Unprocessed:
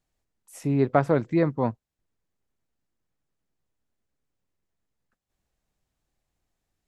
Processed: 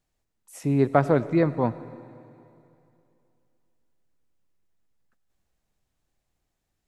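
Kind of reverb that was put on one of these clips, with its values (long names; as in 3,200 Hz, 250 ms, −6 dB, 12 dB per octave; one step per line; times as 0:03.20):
comb and all-pass reverb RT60 2.7 s, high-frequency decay 1×, pre-delay 40 ms, DRR 15.5 dB
level +1 dB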